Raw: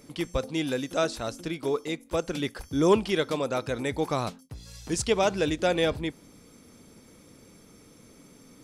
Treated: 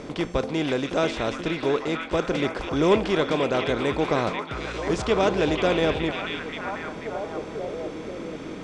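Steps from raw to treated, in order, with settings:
compressor on every frequency bin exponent 0.6
high-frequency loss of the air 120 metres
echo through a band-pass that steps 490 ms, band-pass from 2,600 Hz, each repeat −0.7 octaves, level 0 dB

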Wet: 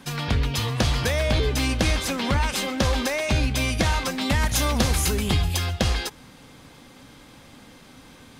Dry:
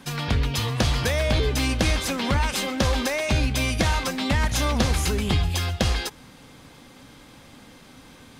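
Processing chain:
0:04.21–0:05.57: high-shelf EQ 9,000 Hz +10 dB

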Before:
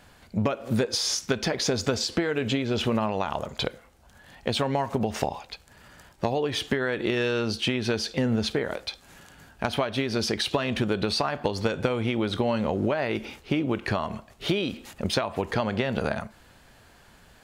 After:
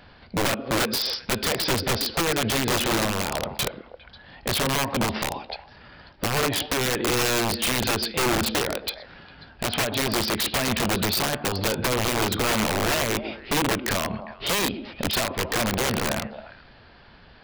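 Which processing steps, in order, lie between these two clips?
downsampling to 11,025 Hz
echo through a band-pass that steps 135 ms, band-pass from 270 Hz, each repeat 1.4 octaves, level −10.5 dB
wrap-around overflow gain 21.5 dB
level +4 dB

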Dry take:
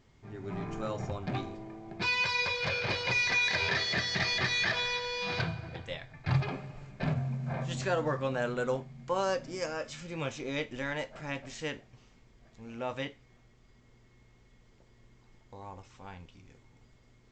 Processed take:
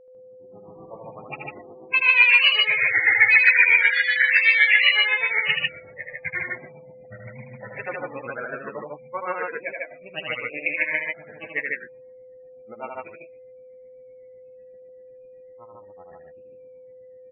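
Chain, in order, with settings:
fade in at the beginning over 1.08 s
in parallel at −10.5 dB: soft clipping −27 dBFS, distortion −14 dB
on the sum: low-pass with resonance 2,200 Hz, resonance Q 6.2
granular cloud 107 ms, grains 7.9 per second, pitch spread up and down by 3 semitones
low-pass that shuts in the quiet parts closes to 490 Hz, open at −22 dBFS
low-shelf EQ 87 Hz −10 dB
spectral peaks only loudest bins 32
spectral tilt +3 dB per octave
steady tone 510 Hz −51 dBFS
on a send: loudspeakers that aren't time-aligned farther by 27 metres −4 dB, 51 metres −1 dB
on the sum: level +2 dB

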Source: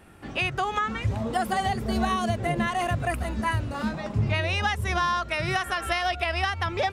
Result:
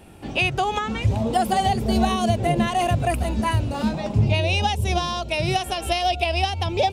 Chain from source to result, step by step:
flat-topped bell 1,500 Hz −8 dB 1.1 octaves, from 0:04.25 −16 dB
level +6 dB

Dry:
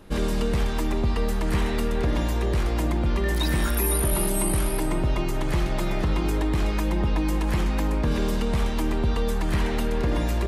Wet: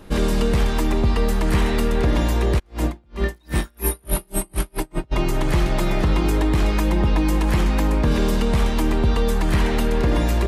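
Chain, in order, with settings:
0:02.58–0:05.11: tremolo with a sine in dB 2.1 Hz → 5.9 Hz, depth 40 dB
level +5 dB

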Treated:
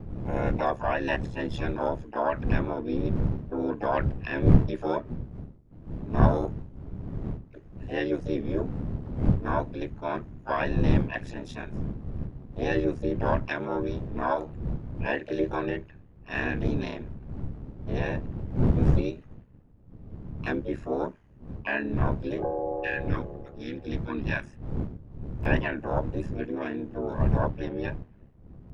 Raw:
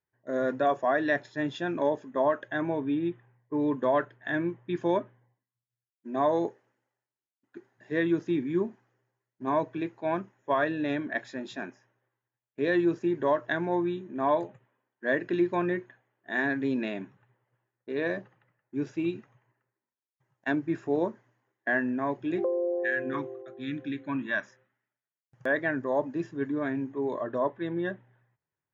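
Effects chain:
wind on the microphone 130 Hz −28 dBFS
ring modulation 36 Hz
pitch-shifted copies added +7 semitones −6 dB

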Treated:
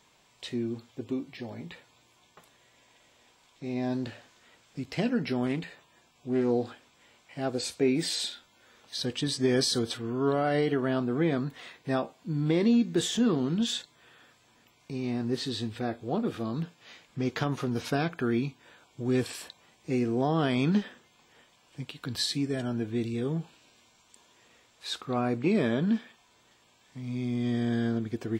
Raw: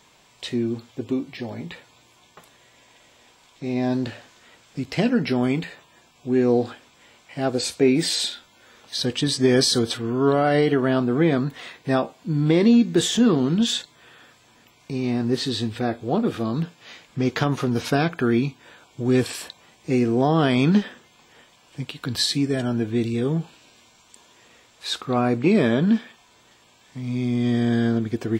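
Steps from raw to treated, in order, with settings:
0:05.46–0:06.51: highs frequency-modulated by the lows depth 0.16 ms
level −7.5 dB

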